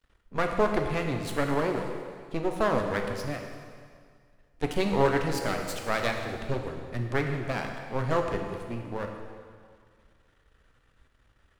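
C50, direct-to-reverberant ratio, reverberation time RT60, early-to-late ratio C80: 4.5 dB, 3.0 dB, 2.0 s, 6.0 dB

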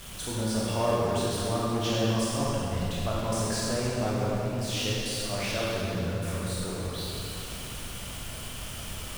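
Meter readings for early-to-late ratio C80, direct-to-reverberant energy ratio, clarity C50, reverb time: −2.0 dB, −6.5 dB, −3.5 dB, 2.8 s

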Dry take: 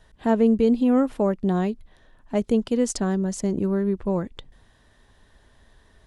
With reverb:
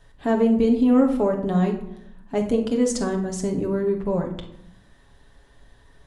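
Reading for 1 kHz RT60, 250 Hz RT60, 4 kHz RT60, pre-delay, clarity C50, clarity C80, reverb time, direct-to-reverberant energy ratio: 0.80 s, 1.1 s, 0.45 s, 7 ms, 7.5 dB, 12.0 dB, 0.80 s, 1.0 dB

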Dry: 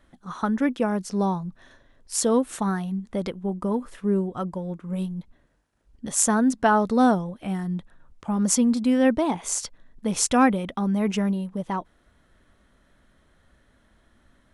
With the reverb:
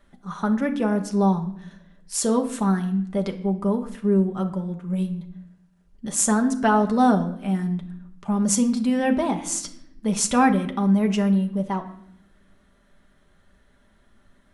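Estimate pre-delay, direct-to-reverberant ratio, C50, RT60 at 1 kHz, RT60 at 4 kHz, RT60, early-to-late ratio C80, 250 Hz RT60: 5 ms, 3.5 dB, 12.0 dB, 0.65 s, 0.60 s, 0.70 s, 15.5 dB, 1.2 s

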